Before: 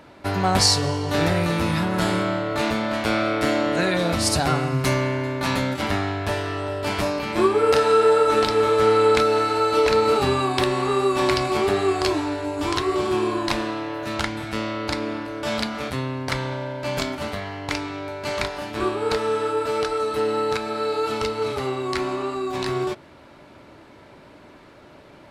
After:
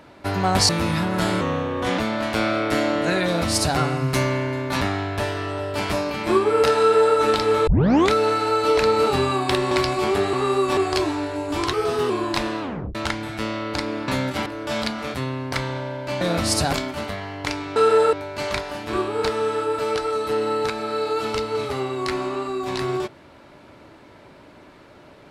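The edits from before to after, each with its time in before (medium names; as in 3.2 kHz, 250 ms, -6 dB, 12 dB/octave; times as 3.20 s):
0.69–1.49 s: delete
2.21–2.69 s: speed 84%
3.96–4.48 s: copy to 16.97 s
5.52–5.90 s: move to 15.22 s
7.88–8.25 s: copy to 18.00 s
8.76 s: tape start 0.44 s
10.80–11.24 s: move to 11.86 s
12.82–13.24 s: speed 114%
13.75 s: tape stop 0.34 s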